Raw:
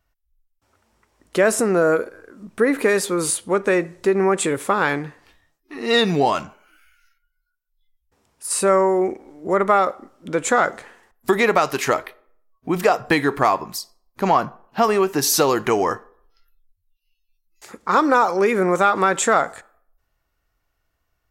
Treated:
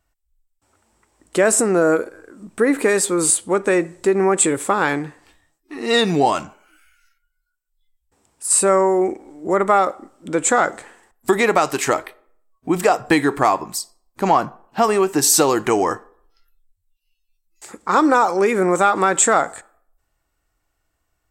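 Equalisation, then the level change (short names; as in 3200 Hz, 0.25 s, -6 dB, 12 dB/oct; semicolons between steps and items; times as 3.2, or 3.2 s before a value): thirty-one-band EQ 315 Hz +5 dB, 800 Hz +3 dB, 8000 Hz +12 dB; 0.0 dB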